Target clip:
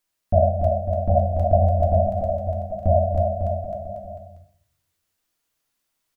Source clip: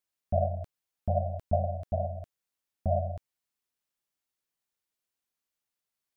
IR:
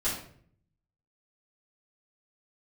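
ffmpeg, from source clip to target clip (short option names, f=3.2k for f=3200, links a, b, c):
-filter_complex "[0:a]aecho=1:1:290|551|785.9|997.3|1188:0.631|0.398|0.251|0.158|0.1,asplit=2[a][b];[1:a]atrim=start_sample=2205[c];[b][c]afir=irnorm=-1:irlink=0,volume=-8dB[d];[a][d]amix=inputs=2:normalize=0,volume=6dB"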